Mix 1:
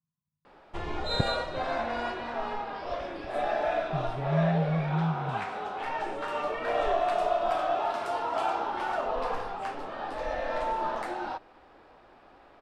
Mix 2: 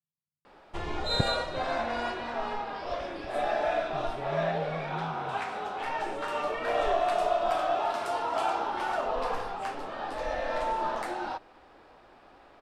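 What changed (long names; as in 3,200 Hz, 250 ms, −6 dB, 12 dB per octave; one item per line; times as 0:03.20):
speech −11.5 dB
background: add high-shelf EQ 5,000 Hz +6.5 dB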